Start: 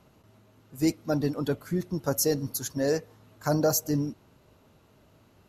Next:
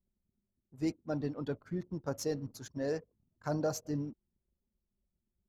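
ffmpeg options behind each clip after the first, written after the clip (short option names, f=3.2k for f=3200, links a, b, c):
-af "anlmdn=0.0398,adynamicsmooth=sensitivity=1.5:basefreq=4.4k,volume=-8.5dB"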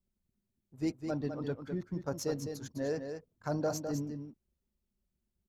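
-af "aecho=1:1:206:0.447"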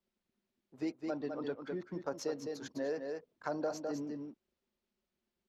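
-filter_complex "[0:a]acrossover=split=250 5300:gain=0.1 1 0.158[a][b][c];[a][b][c]amix=inputs=3:normalize=0,acompressor=threshold=-45dB:ratio=2,volume=6dB"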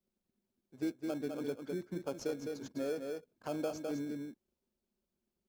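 -filter_complex "[0:a]equalizer=f=1.8k:t=o:w=2.3:g=-8.5,asplit=2[a][b];[b]acrusher=samples=23:mix=1:aa=0.000001,volume=-6.5dB[c];[a][c]amix=inputs=2:normalize=0,volume=-1dB"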